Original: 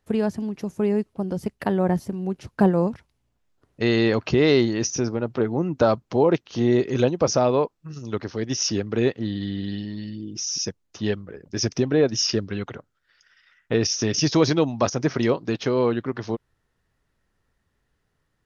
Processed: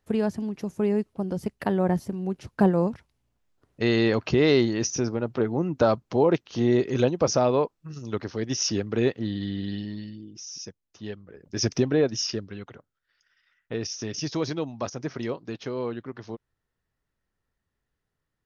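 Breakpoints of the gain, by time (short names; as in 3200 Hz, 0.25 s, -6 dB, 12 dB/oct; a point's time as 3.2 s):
9.93 s -2 dB
10.39 s -11.5 dB
11.16 s -11.5 dB
11.71 s +0.5 dB
12.56 s -9.5 dB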